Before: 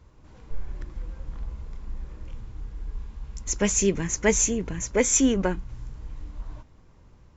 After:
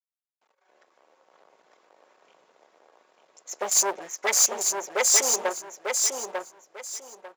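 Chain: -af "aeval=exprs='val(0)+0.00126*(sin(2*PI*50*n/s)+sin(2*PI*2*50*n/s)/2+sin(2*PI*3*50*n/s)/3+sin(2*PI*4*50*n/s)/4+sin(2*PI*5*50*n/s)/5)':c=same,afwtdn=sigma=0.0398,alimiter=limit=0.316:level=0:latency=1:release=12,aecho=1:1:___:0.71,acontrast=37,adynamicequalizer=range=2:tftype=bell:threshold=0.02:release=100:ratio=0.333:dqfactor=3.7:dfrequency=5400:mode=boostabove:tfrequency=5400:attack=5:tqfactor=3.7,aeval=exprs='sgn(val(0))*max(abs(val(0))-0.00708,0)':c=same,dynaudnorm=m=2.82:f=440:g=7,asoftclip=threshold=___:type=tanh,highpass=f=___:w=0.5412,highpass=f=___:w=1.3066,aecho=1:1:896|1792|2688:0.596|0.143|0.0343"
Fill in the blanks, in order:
5.4, 0.2, 550, 550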